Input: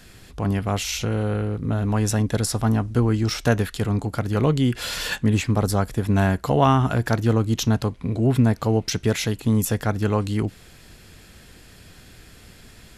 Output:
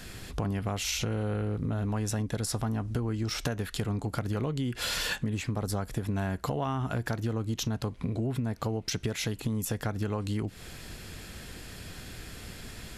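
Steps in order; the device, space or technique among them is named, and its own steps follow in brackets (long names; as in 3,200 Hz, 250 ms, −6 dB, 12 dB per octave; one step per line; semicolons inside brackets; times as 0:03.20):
serial compression, peaks first (downward compressor, threshold −29 dBFS, peak gain reduction 15 dB; downward compressor 2 to 1, threshold −33 dBFS, peak gain reduction 4.5 dB)
level +3.5 dB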